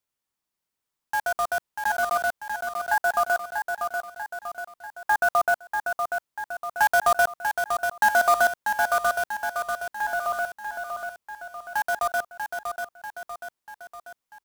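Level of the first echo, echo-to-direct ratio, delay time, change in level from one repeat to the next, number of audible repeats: -6.0 dB, -4.5 dB, 641 ms, -5.5 dB, 4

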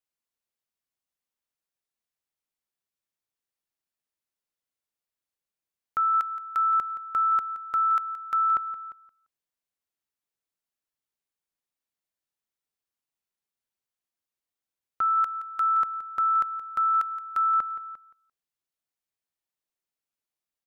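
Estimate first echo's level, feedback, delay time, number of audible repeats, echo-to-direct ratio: -14.0 dB, 19%, 172 ms, 2, -14.0 dB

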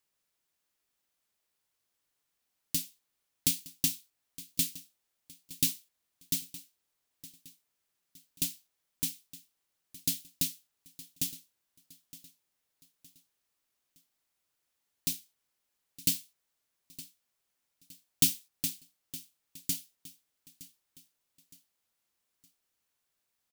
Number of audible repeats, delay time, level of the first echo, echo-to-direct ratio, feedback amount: 3, 915 ms, -18.0 dB, -17.0 dB, 42%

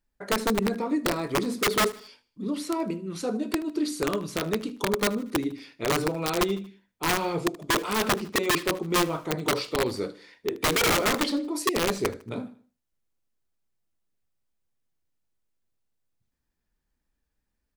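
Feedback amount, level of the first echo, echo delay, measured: 45%, -20.5 dB, 77 ms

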